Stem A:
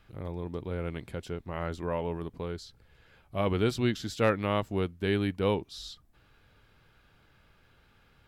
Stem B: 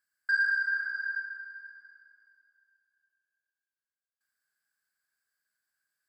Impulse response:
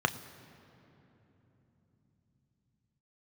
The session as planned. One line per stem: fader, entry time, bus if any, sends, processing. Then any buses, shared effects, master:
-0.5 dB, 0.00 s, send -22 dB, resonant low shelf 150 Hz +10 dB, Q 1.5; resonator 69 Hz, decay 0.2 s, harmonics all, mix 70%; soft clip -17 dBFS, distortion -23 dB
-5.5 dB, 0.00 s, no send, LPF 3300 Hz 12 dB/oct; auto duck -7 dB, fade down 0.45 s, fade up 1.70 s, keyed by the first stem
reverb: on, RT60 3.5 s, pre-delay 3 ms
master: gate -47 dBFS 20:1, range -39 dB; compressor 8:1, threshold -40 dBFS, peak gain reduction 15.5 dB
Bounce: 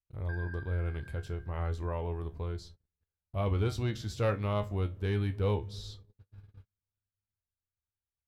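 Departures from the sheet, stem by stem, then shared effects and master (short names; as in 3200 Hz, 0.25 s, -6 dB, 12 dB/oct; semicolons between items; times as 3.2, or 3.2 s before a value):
stem B -5.5 dB -> -13.0 dB; master: missing compressor 8:1, threshold -40 dBFS, peak gain reduction 15.5 dB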